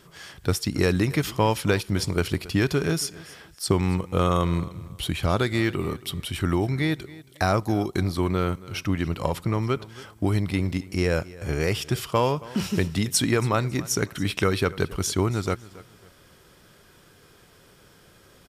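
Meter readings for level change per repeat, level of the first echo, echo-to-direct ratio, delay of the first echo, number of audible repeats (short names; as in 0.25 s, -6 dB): -11.0 dB, -19.5 dB, -19.0 dB, 0.275 s, 2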